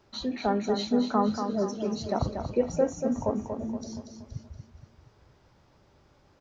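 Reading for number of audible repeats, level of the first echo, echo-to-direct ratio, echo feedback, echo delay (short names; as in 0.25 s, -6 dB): 5, -7.0 dB, -6.0 dB, 45%, 0.236 s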